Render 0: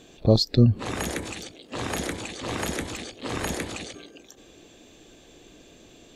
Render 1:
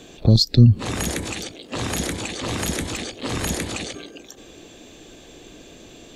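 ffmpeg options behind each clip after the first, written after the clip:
ffmpeg -i in.wav -filter_complex "[0:a]acrossover=split=250|3000[link_01][link_02][link_03];[link_02]acompressor=threshold=-35dB:ratio=6[link_04];[link_01][link_04][link_03]amix=inputs=3:normalize=0,volume=7dB" out.wav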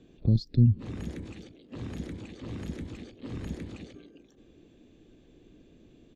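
ffmpeg -i in.wav -af "firequalizer=gain_entry='entry(230,0);entry(700,-13);entry(2100,-12);entry(9500,-26)':delay=0.05:min_phase=1,volume=-8.5dB" out.wav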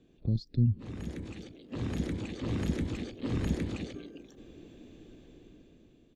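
ffmpeg -i in.wav -af "dynaudnorm=framelen=330:gausssize=7:maxgain=12.5dB,volume=-6.5dB" out.wav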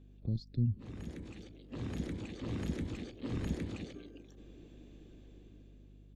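ffmpeg -i in.wav -af "aeval=exprs='val(0)+0.00316*(sin(2*PI*50*n/s)+sin(2*PI*2*50*n/s)/2+sin(2*PI*3*50*n/s)/3+sin(2*PI*4*50*n/s)/4+sin(2*PI*5*50*n/s)/5)':channel_layout=same,volume=-5.5dB" out.wav

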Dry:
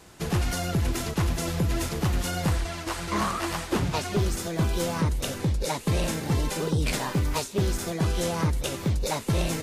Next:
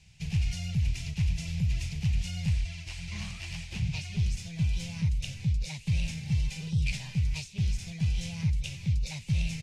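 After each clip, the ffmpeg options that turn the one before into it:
ffmpeg -i in.wav -af "firequalizer=gain_entry='entry(150,0);entry(290,-29);entry(780,-20);entry(1200,-29);entry(2400,0);entry(3500,-7);entry(5400,-5);entry(14000,-26)':delay=0.05:min_phase=1,volume=-1dB" out.wav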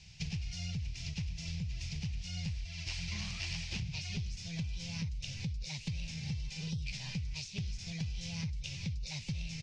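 ffmpeg -i in.wav -af "acompressor=threshold=-37dB:ratio=10,lowpass=frequency=5400:width_type=q:width=2.2,volume=1.5dB" out.wav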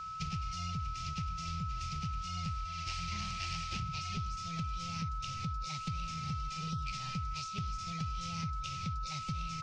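ffmpeg -i in.wav -af "aeval=exprs='val(0)+0.0112*sin(2*PI*1300*n/s)':channel_layout=same,volume=-1dB" out.wav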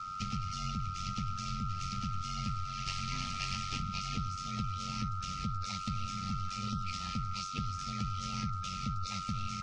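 ffmpeg -i in.wav -af "aeval=exprs='val(0)*sin(2*PI*47*n/s)':channel_layout=same,volume=4.5dB" -ar 48000 -c:a libvorbis -b:a 48k out.ogg

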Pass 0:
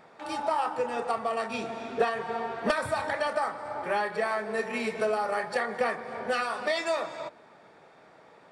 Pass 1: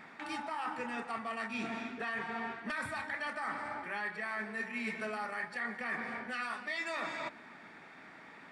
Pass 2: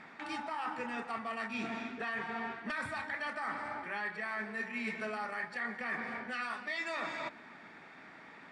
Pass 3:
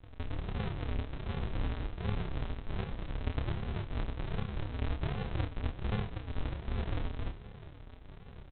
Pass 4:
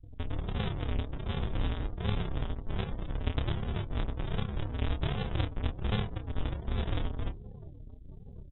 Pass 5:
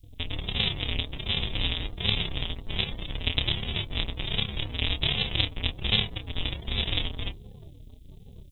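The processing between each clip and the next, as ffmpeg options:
ffmpeg -i in.wav -af "equalizer=frequency=125:width_type=o:width=1:gain=-3,equalizer=frequency=250:width_type=o:width=1:gain=9,equalizer=frequency=500:width_type=o:width=1:gain=-10,equalizer=frequency=2000:width_type=o:width=1:gain=10,areverse,acompressor=threshold=-35dB:ratio=10,areverse" out.wav
ffmpeg -i in.wav -af "lowpass=8100" out.wav
ffmpeg -i in.wav -af "aresample=8000,acrusher=samples=36:mix=1:aa=0.000001:lfo=1:lforange=21.6:lforate=1.3,aresample=44100,aecho=1:1:29|58:0.531|0.168,volume=3.5dB" out.wav
ffmpeg -i in.wav -af "afftdn=noise_reduction=30:noise_floor=-50,equalizer=frequency=3500:width_type=o:width=0.6:gain=9.5,volume=3dB" out.wav
ffmpeg -i in.wav -af "aexciter=amount=10.7:drive=2.4:freq=2200" out.wav

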